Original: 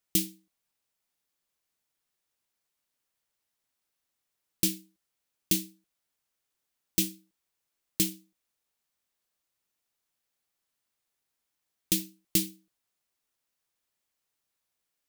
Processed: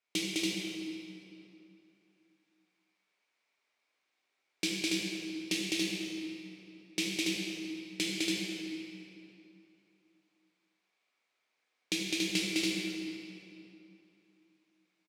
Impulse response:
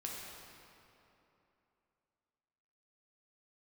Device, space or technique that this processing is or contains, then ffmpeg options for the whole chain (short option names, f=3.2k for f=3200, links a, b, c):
station announcement: -filter_complex "[0:a]highpass=310,lowpass=4.6k,equalizer=f=2.3k:t=o:w=0.25:g=9.5,aecho=1:1:207|282.8:0.794|0.708[a];[1:a]atrim=start_sample=2205[b];[a][b]afir=irnorm=-1:irlink=0,volume=3.5dB"